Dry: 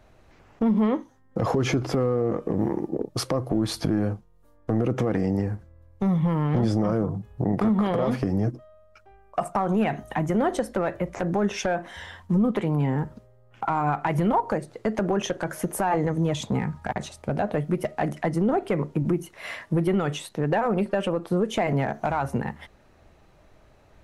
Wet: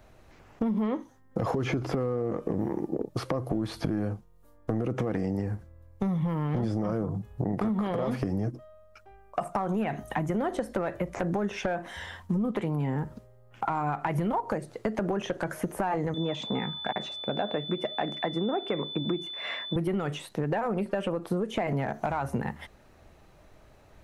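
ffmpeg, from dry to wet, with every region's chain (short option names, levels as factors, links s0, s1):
-filter_complex "[0:a]asettb=1/sr,asplit=3[s0][s1][s2];[s0]atrim=end=16.144[s3];[s1]atrim=start=16.14:end=19.76,asetpts=PTS-STARTPTS,afade=t=in:d=0.004:c=qsin,afade=t=out:st=3.616:d=0.004:c=qsin,aeval=exprs='val(0)+0.0251*sin(2*PI*3500*n/s)':c=same,highpass=220,lowpass=5500[s4];[s2]atrim=start=19.756[s5];[s3][s4]acrossfade=d=0.004:c1=hsin:c2=qsin[s6];[s6][s5]acrossfade=d=0.004:c1=qsin:c2=hsin,acrossover=split=3200[s7][s8];[s8]acompressor=threshold=0.00447:ratio=4:attack=1:release=60[s9];[s7][s9]amix=inputs=2:normalize=0,highshelf=f=10000:g=6.5,acompressor=threshold=0.0562:ratio=6"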